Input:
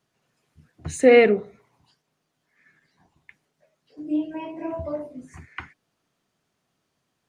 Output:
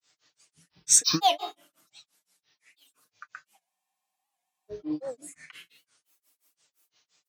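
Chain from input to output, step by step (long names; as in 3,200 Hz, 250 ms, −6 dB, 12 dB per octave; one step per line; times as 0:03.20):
downward compressor 6 to 1, threshold −19 dBFS, peak gain reduction 10 dB
RIAA equalisation recording
tuned comb filter 120 Hz, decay 0.57 s, harmonics all, mix 60%
convolution reverb RT60 0.65 s, pre-delay 3 ms, DRR 11.5 dB
downsampling to 22,050 Hz
high-pass filter 85 Hz
high-shelf EQ 2,800 Hz +9.5 dB
mains-hum notches 60/120/180/240/300 Hz
granular cloud 177 ms, grains 5.8 per second, pitch spread up and down by 12 semitones
comb filter 6.6 ms, depth 56%
frozen spectrum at 0:03.63, 1.08 s
wow of a warped record 78 rpm, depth 160 cents
level +4.5 dB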